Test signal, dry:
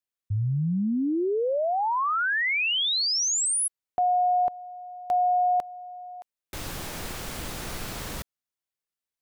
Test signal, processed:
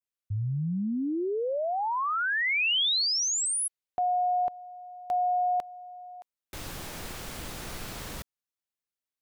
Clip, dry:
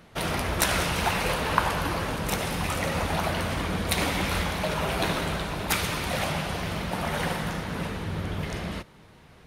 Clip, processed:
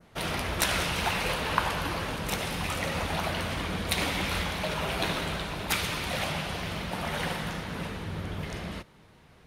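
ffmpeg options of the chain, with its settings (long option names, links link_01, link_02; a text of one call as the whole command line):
ffmpeg -i in.wav -af "adynamicequalizer=threshold=0.0112:dfrequency=3200:dqfactor=0.87:tfrequency=3200:tqfactor=0.87:attack=5:release=100:ratio=0.375:range=2:mode=boostabove:tftype=bell,volume=-4dB" out.wav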